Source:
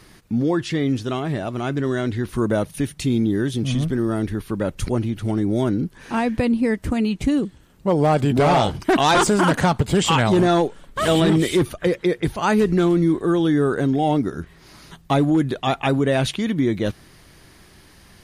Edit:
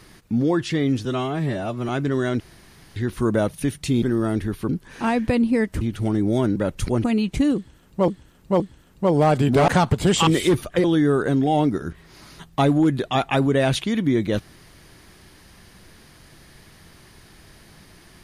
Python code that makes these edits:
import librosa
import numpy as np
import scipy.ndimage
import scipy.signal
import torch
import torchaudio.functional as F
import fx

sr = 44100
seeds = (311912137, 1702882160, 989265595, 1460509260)

y = fx.edit(x, sr, fx.stretch_span(start_s=1.05, length_s=0.56, factor=1.5),
    fx.insert_room_tone(at_s=2.12, length_s=0.56),
    fx.cut(start_s=3.18, length_s=0.71),
    fx.swap(start_s=4.56, length_s=0.48, other_s=5.79, other_length_s=1.12),
    fx.repeat(start_s=7.43, length_s=0.52, count=3),
    fx.cut(start_s=8.51, length_s=1.05),
    fx.cut(start_s=10.15, length_s=1.2),
    fx.cut(start_s=11.92, length_s=1.44), tone=tone)